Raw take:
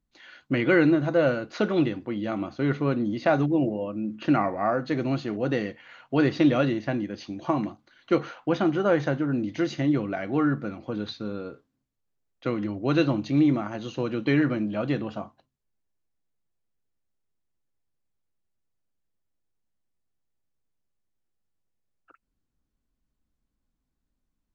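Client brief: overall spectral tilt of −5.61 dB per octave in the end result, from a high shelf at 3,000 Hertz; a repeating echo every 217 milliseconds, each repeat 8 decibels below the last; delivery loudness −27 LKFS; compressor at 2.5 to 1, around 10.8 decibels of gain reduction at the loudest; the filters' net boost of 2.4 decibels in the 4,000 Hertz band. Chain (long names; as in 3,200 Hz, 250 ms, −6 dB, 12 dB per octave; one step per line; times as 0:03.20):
high-shelf EQ 3,000 Hz −3.5 dB
parametric band 4,000 Hz +5.5 dB
downward compressor 2.5 to 1, threshold −33 dBFS
repeating echo 217 ms, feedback 40%, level −8 dB
level +6.5 dB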